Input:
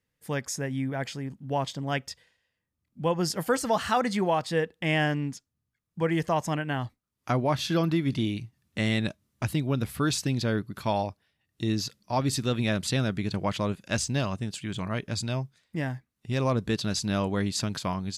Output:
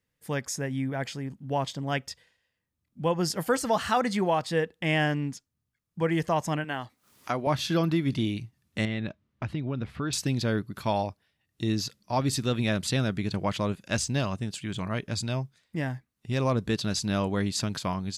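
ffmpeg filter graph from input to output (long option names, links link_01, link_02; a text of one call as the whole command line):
ffmpeg -i in.wav -filter_complex "[0:a]asettb=1/sr,asplit=3[link_01][link_02][link_03];[link_01]atrim=end=6.644[link_04];[link_02]atrim=start=6.64:end=7.47,asetpts=PTS-STARTPTS,afade=type=in:duration=0.004:curve=qsin,afade=type=out:start_time=0.826:duration=0.004:curve=qsin,highpass=frequency=410:poles=1,acompressor=mode=upward:threshold=-38dB:ratio=2.5:attack=3.2:release=140:knee=2.83:detection=peak[link_05];[link_03]atrim=start=7.466[link_06];[link_04][link_05]acrossfade=duration=0.004:curve1=hsin:curve2=qsin[link_07];[link_07][link_06]acrossfade=duration=0.004:curve1=qsin:curve2=hsin,asettb=1/sr,asplit=3[link_08][link_09][link_10];[link_08]atrim=end=8.854[link_11];[link_09]atrim=start=8.85:end=10.13,asetpts=PTS-STARTPTS,afade=type=in:duration=0.004:curve=qsin,afade=type=out:start_time=1.276:duration=0.004:curve=qsin,lowpass=3000,acompressor=threshold=-28dB:ratio=2.5:attack=3.2:release=140:knee=1:detection=peak[link_12];[link_10]atrim=start=10.126[link_13];[link_11][link_12]acrossfade=duration=0.004:curve1=hsin:curve2=qsin[link_14];[link_14][link_13]acrossfade=duration=0.004:curve1=qsin:curve2=hsin" out.wav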